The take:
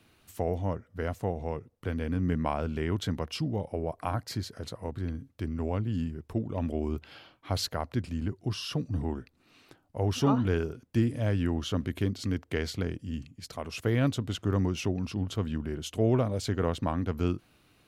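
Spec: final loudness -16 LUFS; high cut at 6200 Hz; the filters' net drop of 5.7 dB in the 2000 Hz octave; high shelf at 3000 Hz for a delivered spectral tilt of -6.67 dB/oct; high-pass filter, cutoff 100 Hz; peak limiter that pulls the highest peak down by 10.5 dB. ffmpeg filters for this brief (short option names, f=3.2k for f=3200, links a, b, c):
-af "highpass=100,lowpass=6.2k,equalizer=f=2k:t=o:g=-6.5,highshelf=f=3k:g=-3,volume=20dB,alimiter=limit=-4dB:level=0:latency=1"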